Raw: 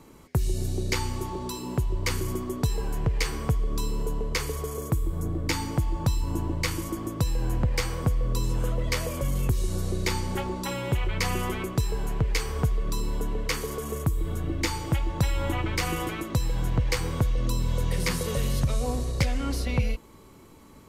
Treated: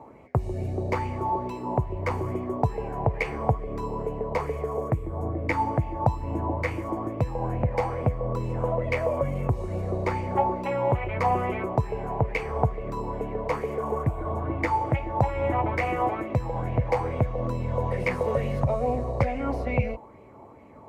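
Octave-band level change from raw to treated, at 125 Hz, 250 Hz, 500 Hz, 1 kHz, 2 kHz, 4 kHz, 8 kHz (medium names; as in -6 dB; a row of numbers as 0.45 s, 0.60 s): 0.0 dB, 0.0 dB, +6.5 dB, +8.5 dB, 0.0 dB, -15.0 dB, under -15 dB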